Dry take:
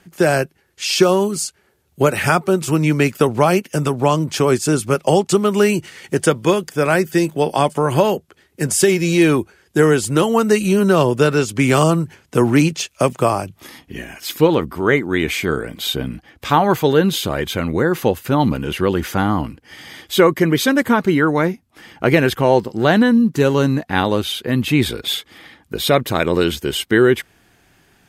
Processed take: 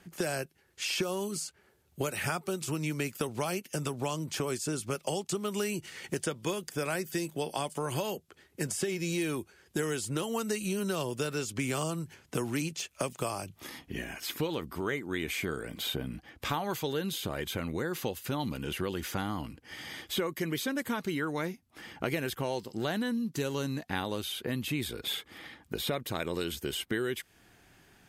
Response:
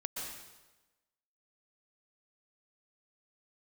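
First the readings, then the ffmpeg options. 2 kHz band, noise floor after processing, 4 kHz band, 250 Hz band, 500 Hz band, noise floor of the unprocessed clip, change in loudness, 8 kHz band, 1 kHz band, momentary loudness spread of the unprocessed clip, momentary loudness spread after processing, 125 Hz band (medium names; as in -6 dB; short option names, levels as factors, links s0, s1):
-15.5 dB, -66 dBFS, -12.5 dB, -17.5 dB, -18.5 dB, -58 dBFS, -17.0 dB, -12.0 dB, -18.0 dB, 9 LU, 6 LU, -17.0 dB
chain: -filter_complex "[0:a]acrossover=split=2700|7500[s0][s1][s2];[s0]acompressor=threshold=0.0447:ratio=4[s3];[s1]acompressor=threshold=0.0158:ratio=4[s4];[s2]acompressor=threshold=0.0141:ratio=4[s5];[s3][s4][s5]amix=inputs=3:normalize=0,volume=0.531"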